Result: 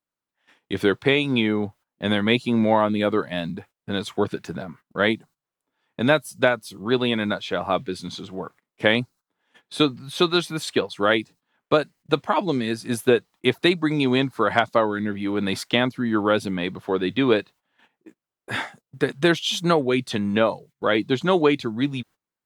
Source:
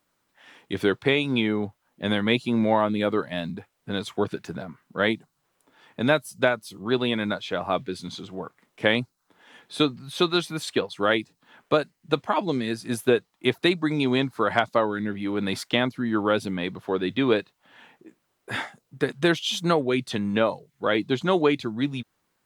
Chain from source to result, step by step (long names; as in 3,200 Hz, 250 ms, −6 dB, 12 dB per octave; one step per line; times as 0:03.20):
noise gate −48 dBFS, range −20 dB
level +2.5 dB